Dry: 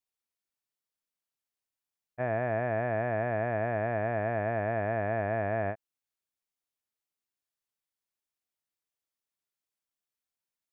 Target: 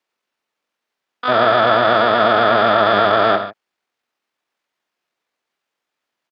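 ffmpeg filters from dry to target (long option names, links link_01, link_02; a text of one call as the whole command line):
ffmpeg -i in.wav -filter_complex "[0:a]asplit=2[link_01][link_02];[link_02]alimiter=level_in=5.5dB:limit=-24dB:level=0:latency=1:release=402,volume=-5.5dB,volume=-1.5dB[link_03];[link_01][link_03]amix=inputs=2:normalize=0,aecho=1:1:115|174|233:0.299|0.168|0.158,atempo=1.7,acrossover=split=180 2900:gain=0.112 1 0.0891[link_04][link_05][link_06];[link_04][link_05][link_06]amix=inputs=3:normalize=0,asplit=2[link_07][link_08];[link_08]asetrate=88200,aresample=44100,atempo=0.5,volume=-1dB[link_09];[link_07][link_09]amix=inputs=2:normalize=0,acontrast=47,volume=7dB" out.wav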